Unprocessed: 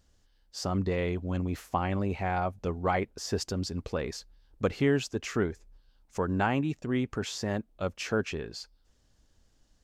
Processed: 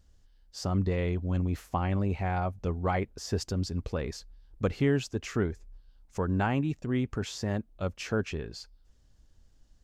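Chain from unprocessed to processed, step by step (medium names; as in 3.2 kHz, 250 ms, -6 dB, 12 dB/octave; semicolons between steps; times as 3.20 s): bass shelf 140 Hz +9.5 dB; trim -2.5 dB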